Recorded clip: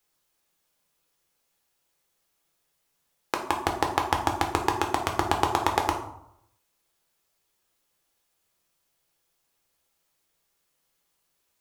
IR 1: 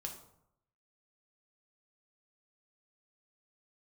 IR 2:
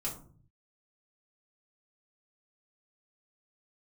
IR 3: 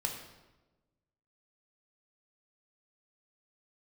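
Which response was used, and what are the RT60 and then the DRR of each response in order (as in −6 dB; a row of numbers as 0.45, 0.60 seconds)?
1; 0.75, 0.45, 1.1 seconds; 2.0, −5.5, 1.0 decibels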